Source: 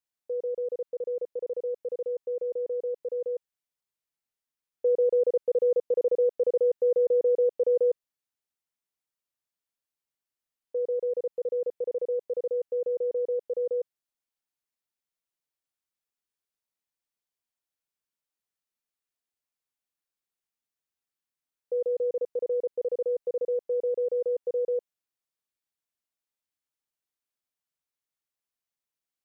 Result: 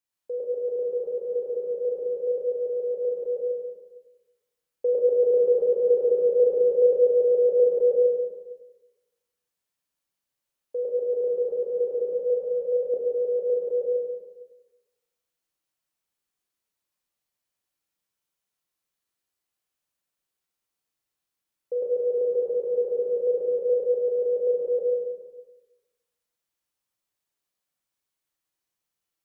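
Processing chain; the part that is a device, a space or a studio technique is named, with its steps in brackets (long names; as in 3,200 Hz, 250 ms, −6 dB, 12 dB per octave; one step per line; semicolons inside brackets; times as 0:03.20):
bathroom (convolution reverb RT60 1.0 s, pre-delay 86 ms, DRR −1.5 dB)
0:12.13–0:12.94: Chebyshev band-stop filter 240–480 Hz, order 2
reverb whose tail is shaped and stops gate 430 ms falling, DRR 2 dB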